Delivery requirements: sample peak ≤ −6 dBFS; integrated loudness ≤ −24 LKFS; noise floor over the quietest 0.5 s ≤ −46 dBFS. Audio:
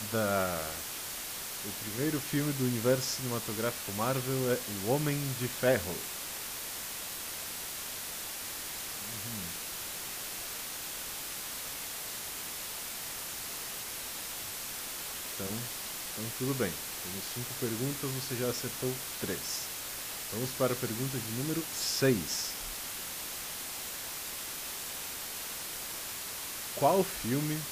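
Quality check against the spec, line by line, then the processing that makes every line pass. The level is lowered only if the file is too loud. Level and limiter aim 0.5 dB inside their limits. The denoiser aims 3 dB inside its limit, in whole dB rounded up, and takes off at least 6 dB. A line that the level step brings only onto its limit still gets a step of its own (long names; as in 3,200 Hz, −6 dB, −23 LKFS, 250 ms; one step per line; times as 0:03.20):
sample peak −14.0 dBFS: in spec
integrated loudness −34.0 LKFS: in spec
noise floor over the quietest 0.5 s −40 dBFS: out of spec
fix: broadband denoise 9 dB, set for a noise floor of −40 dBFS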